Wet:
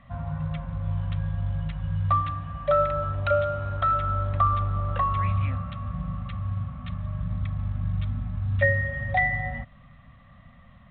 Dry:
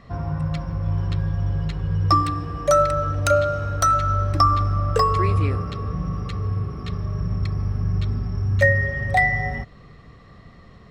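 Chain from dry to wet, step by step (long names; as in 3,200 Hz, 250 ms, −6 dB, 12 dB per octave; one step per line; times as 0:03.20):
elliptic band-stop filter 260–550 Hz, stop band 40 dB
0:02.69–0:05.28: hum with harmonics 100 Hz, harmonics 12, −42 dBFS −3 dB per octave
level −4.5 dB
A-law companding 64 kbit/s 8,000 Hz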